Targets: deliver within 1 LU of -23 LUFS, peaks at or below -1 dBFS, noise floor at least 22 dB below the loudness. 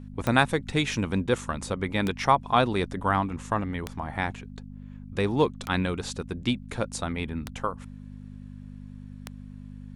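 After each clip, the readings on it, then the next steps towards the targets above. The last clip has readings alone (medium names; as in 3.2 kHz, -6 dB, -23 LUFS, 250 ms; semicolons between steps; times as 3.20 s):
clicks found 6; hum 50 Hz; highest harmonic 250 Hz; hum level -38 dBFS; loudness -27.5 LUFS; peak level -5.0 dBFS; loudness target -23.0 LUFS
-> de-click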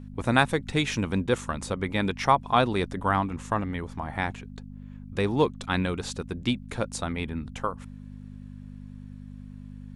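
clicks found 0; hum 50 Hz; highest harmonic 250 Hz; hum level -38 dBFS
-> de-hum 50 Hz, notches 5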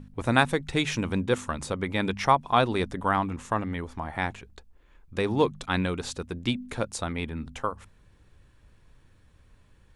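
hum not found; loudness -28.0 LUFS; peak level -5.0 dBFS; loudness target -23.0 LUFS
-> trim +5 dB; peak limiter -1 dBFS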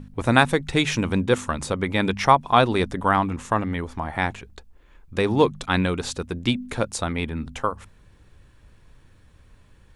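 loudness -23.0 LUFS; peak level -1.0 dBFS; noise floor -54 dBFS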